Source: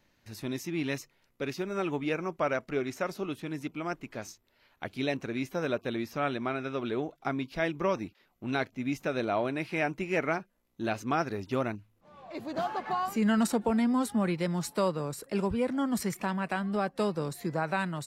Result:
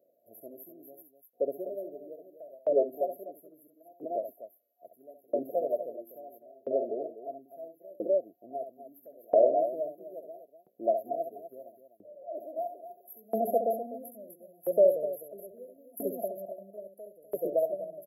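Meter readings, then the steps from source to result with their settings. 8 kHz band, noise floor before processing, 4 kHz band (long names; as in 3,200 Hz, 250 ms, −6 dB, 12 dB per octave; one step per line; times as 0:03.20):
below −10 dB, −71 dBFS, below −40 dB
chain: brick-wall band-stop 720–11,000 Hz
dynamic equaliser 2,100 Hz, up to −3 dB, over −56 dBFS, Q 1.7
loudspeakers that aren't time-aligned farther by 23 metres −7 dB, 86 metres −5 dB
auto-filter high-pass saw up 0.75 Hz 490–2,400 Hz
level +2.5 dB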